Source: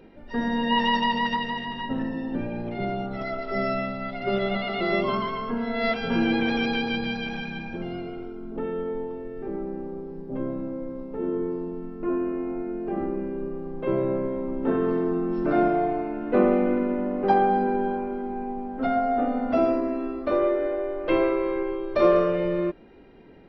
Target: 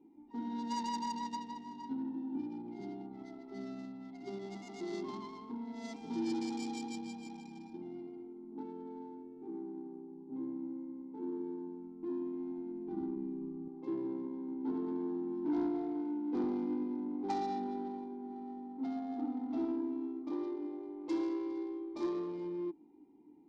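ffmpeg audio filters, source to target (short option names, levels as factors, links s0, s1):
-filter_complex "[0:a]asplit=3[s0][s1][s2];[s0]bandpass=f=300:t=q:w=8,volume=1[s3];[s1]bandpass=f=870:t=q:w=8,volume=0.501[s4];[s2]bandpass=f=2240:t=q:w=8,volume=0.355[s5];[s3][s4][s5]amix=inputs=3:normalize=0,highshelf=f=2900:g=-6,adynamicsmooth=sensitivity=5.5:basefreq=1600,aexciter=amount=12.7:drive=5.9:freq=3800,asoftclip=type=tanh:threshold=0.0501,asettb=1/sr,asplit=3[s6][s7][s8];[s6]atrim=end=11.644[s9];[s7]atrim=start=11.64:end=13.68,asetpts=PTS-STARTPTS,afade=t=in:d=0.004:c=qsin,afade=t=out:st=2.036:d=0.004:c=qsin,asubboost=boost=7.5:cutoff=210[s10];[s8]atrim=start=13.676[s11];[s9][s10]acrossfade=d=0.004:c1=hsin:c2=qsin[s12];[s12][s11]acrossfade=d=0.004:c1=qsin:c2=hsin,volume=0.891"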